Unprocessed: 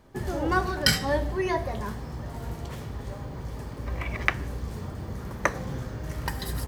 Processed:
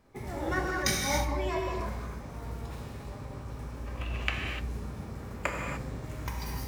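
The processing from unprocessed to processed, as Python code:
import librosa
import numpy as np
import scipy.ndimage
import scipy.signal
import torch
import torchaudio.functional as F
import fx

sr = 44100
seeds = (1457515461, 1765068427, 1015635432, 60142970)

y = fx.rev_gated(x, sr, seeds[0], gate_ms=320, shape='flat', drr_db=-0.5)
y = fx.formant_shift(y, sr, semitones=3)
y = y * librosa.db_to_amplitude(-8.0)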